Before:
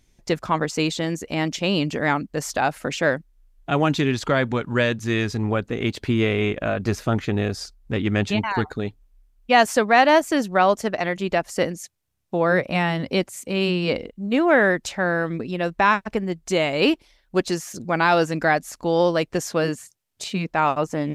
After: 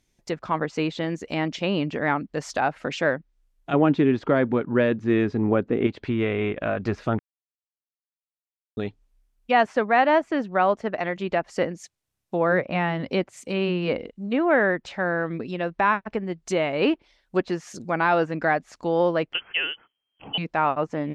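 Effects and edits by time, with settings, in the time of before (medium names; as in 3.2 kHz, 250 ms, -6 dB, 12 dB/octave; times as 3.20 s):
3.73–5.87 s: peaking EQ 310 Hz +9 dB 2.1 oct
7.19–8.77 s: mute
19.33–20.38 s: frequency inversion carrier 3.2 kHz
whole clip: low-pass that closes with the level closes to 2.3 kHz, closed at -19 dBFS; bass shelf 100 Hz -7.5 dB; level rider gain up to 5 dB; trim -6 dB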